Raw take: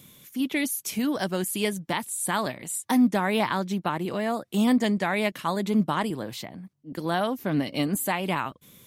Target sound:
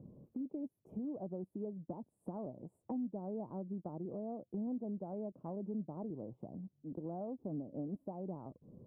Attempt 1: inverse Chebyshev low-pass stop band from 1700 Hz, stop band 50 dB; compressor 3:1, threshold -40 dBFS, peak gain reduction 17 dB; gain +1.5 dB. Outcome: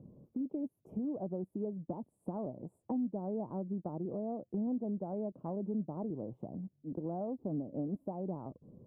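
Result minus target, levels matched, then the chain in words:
compressor: peak gain reduction -4.5 dB
inverse Chebyshev low-pass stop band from 1700 Hz, stop band 50 dB; compressor 3:1, threshold -46.5 dBFS, peak gain reduction 21.5 dB; gain +1.5 dB

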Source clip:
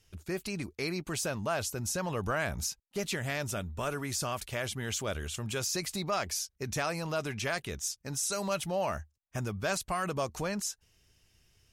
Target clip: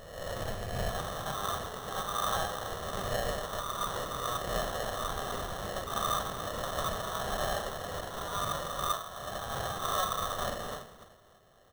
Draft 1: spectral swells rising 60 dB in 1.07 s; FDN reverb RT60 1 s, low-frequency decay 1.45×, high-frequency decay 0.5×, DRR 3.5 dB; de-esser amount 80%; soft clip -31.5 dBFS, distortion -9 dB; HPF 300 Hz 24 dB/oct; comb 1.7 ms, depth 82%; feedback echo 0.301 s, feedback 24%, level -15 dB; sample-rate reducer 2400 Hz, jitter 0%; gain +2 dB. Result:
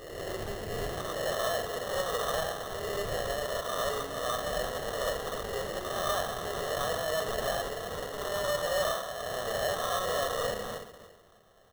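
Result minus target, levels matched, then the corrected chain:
soft clip: distortion +7 dB; 1000 Hz band -3.0 dB
spectral swells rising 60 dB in 1.07 s; FDN reverb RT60 1 s, low-frequency decay 1.45×, high-frequency decay 0.5×, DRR 3.5 dB; de-esser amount 80%; soft clip -24 dBFS, distortion -15 dB; HPF 1100 Hz 24 dB/oct; comb 1.7 ms, depth 82%; feedback echo 0.301 s, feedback 24%, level -15 dB; sample-rate reducer 2400 Hz, jitter 0%; gain +2 dB

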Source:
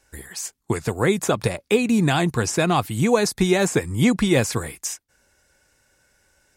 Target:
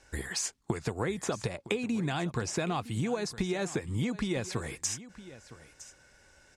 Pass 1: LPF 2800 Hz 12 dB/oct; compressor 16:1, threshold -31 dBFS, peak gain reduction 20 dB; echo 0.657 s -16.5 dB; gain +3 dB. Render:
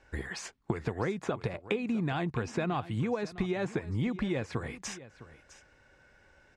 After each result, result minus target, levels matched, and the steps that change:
8000 Hz band -10.5 dB; echo 0.304 s early
change: LPF 7100 Hz 12 dB/oct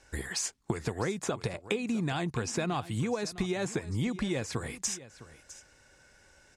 echo 0.304 s early
change: echo 0.961 s -16.5 dB

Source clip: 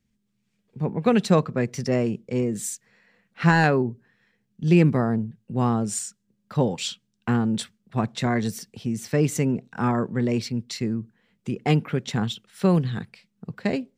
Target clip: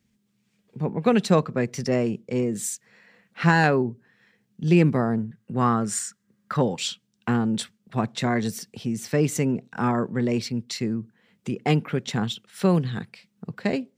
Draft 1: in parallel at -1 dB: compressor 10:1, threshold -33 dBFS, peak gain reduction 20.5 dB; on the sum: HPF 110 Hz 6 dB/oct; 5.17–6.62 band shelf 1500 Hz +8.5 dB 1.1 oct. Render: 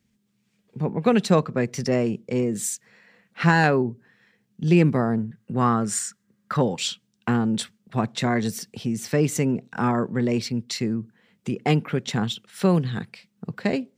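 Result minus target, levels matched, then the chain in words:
compressor: peak gain reduction -9 dB
in parallel at -1 dB: compressor 10:1, threshold -43 dBFS, peak gain reduction 29.5 dB; on the sum: HPF 110 Hz 6 dB/oct; 5.17–6.62 band shelf 1500 Hz +8.5 dB 1.1 oct

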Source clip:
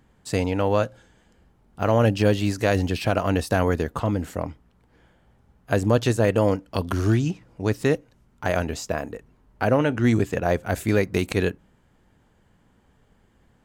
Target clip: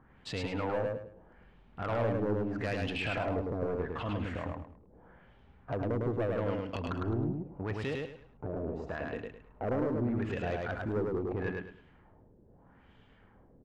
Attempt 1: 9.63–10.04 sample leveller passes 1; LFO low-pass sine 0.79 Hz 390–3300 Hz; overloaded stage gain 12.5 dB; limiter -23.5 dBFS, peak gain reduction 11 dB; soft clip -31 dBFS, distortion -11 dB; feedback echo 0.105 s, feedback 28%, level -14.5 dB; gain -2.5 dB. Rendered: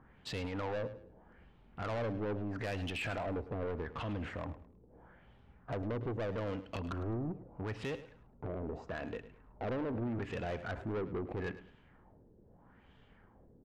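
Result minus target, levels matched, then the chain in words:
echo-to-direct -12 dB; soft clip: distortion +8 dB
9.63–10.04 sample leveller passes 1; LFO low-pass sine 0.79 Hz 390–3300 Hz; overloaded stage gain 12.5 dB; limiter -23.5 dBFS, peak gain reduction 11 dB; soft clip -24.5 dBFS, distortion -19 dB; feedback echo 0.105 s, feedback 28%, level -2.5 dB; gain -2.5 dB

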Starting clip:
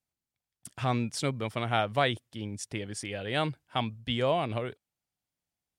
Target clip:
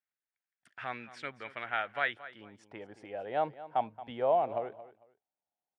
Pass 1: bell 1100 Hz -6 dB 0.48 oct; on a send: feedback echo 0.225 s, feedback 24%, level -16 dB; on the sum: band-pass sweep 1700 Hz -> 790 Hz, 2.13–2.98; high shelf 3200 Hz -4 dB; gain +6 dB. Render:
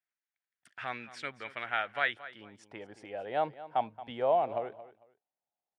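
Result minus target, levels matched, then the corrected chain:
4000 Hz band +3.0 dB
bell 1100 Hz -6 dB 0.48 oct; on a send: feedback echo 0.225 s, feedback 24%, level -16 dB; on the sum: band-pass sweep 1700 Hz -> 790 Hz, 2.13–2.98; high shelf 3200 Hz -10.5 dB; gain +6 dB

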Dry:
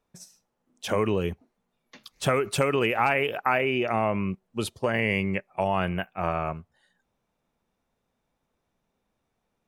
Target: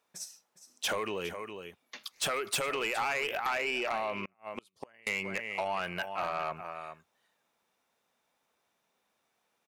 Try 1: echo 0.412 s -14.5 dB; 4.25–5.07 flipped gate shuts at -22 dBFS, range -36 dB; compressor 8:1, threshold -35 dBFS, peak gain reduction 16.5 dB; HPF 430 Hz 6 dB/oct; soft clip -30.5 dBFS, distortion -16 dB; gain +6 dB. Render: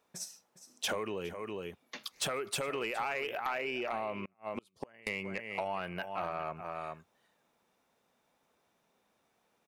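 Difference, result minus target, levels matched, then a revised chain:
compressor: peak gain reduction +8 dB; 500 Hz band +2.5 dB
echo 0.412 s -14.5 dB; 4.25–5.07 flipped gate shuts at -22 dBFS, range -36 dB; compressor 8:1, threshold -26 dBFS, peak gain reduction 8.5 dB; HPF 1100 Hz 6 dB/oct; soft clip -30.5 dBFS, distortion -11 dB; gain +6 dB

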